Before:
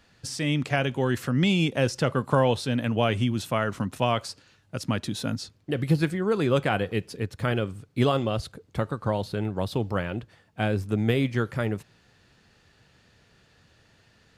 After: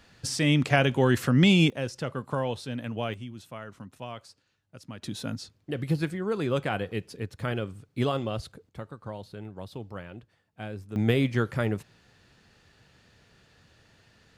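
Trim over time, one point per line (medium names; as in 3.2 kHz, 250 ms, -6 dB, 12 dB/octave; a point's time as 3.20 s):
+3 dB
from 1.70 s -8 dB
from 3.14 s -15 dB
from 5.02 s -4.5 dB
from 8.69 s -12 dB
from 10.96 s 0 dB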